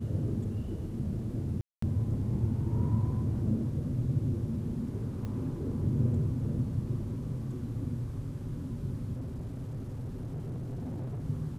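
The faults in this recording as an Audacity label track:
1.610000	1.820000	gap 0.214 s
5.250000	5.250000	pop -27 dBFS
9.160000	11.240000	clipped -34 dBFS

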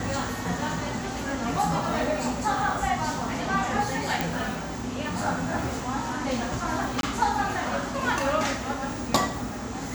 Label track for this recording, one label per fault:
4.210000	4.210000	pop
7.010000	7.030000	gap 22 ms

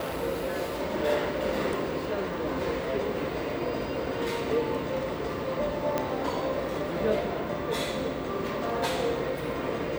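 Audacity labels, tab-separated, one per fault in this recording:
5.980000	5.980000	pop -13 dBFS

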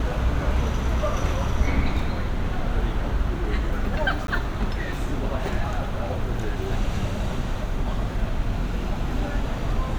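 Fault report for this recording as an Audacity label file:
4.270000	4.280000	gap 12 ms

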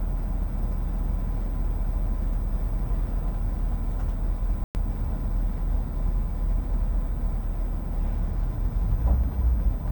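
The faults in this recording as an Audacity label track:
4.640000	4.750000	gap 0.109 s

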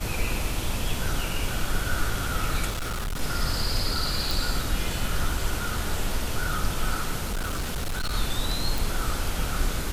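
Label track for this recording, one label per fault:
2.690000	3.210000	clipped -26.5 dBFS
4.310000	4.310000	pop
7.240000	8.150000	clipped -24.5 dBFS
8.780000	8.780000	pop

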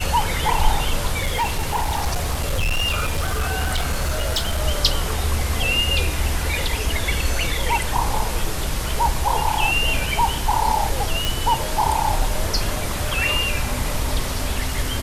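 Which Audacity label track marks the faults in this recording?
1.180000	4.610000	clipped -17 dBFS
11.250000	11.250000	pop

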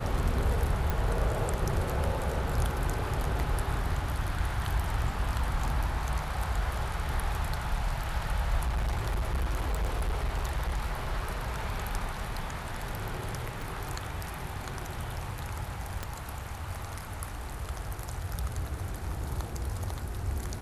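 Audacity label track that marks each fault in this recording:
0.900000	0.900000	pop
8.630000	11.770000	clipped -25.5 dBFS
13.620000	13.620000	pop
16.030000	16.030000	pop -19 dBFS

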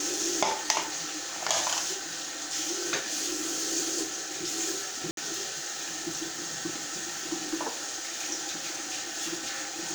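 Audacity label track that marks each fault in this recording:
5.110000	5.170000	gap 62 ms

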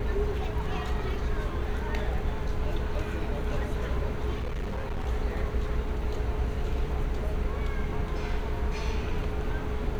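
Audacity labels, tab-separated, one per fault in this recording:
4.380000	5.080000	clipped -28 dBFS

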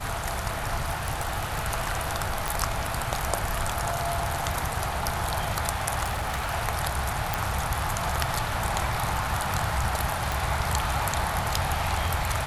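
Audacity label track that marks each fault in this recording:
0.870000	1.640000	clipped -22 dBFS
2.480000	2.480000	pop
6.030000	6.530000	clipped -24.5 dBFS
7.340000	7.340000	pop
10.320000	10.320000	pop

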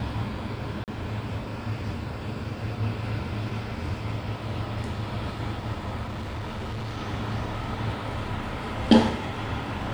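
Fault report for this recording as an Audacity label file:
0.840000	0.880000	gap 38 ms
6.030000	6.980000	clipped -30 dBFS

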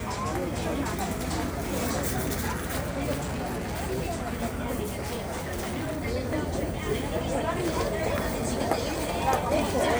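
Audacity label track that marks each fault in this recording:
3.140000	3.840000	clipped -28 dBFS
4.820000	6.030000	clipped -28 dBFS

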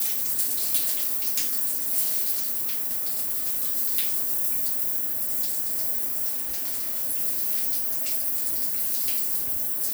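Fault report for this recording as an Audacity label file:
2.310000	3.580000	clipped -22 dBFS
6.290000	7.030000	clipped -24.5 dBFS

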